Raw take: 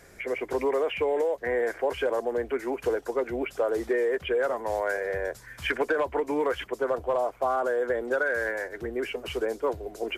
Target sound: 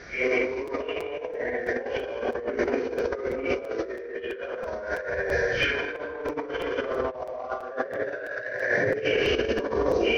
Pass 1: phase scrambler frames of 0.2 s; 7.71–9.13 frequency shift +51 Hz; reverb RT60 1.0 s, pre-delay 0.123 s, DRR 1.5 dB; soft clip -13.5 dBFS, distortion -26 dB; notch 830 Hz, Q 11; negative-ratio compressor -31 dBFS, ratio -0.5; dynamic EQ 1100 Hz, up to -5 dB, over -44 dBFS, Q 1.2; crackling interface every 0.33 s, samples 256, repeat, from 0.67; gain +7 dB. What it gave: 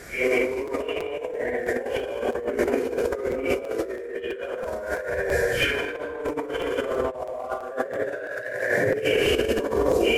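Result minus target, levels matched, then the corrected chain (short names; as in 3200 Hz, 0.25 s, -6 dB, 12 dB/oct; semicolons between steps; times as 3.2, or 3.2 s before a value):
8000 Hz band +7.0 dB
phase scrambler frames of 0.2 s; 7.71–9.13 frequency shift +51 Hz; reverb RT60 1.0 s, pre-delay 0.123 s, DRR 1.5 dB; soft clip -13.5 dBFS, distortion -26 dB; notch 830 Hz, Q 11; negative-ratio compressor -31 dBFS, ratio -0.5; dynamic EQ 1100 Hz, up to -5 dB, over -44 dBFS, Q 1.2; rippled Chebyshev low-pass 6100 Hz, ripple 3 dB; crackling interface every 0.33 s, samples 256, repeat, from 0.67; gain +7 dB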